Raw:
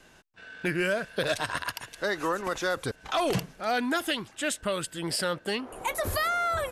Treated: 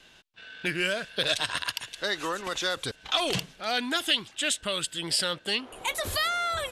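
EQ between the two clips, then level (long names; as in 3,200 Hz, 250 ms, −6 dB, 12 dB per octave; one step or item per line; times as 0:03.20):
dynamic equaliser 8,000 Hz, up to +6 dB, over −52 dBFS, Q 1.2
parametric band 3,400 Hz +12.5 dB 1.2 octaves
−4.0 dB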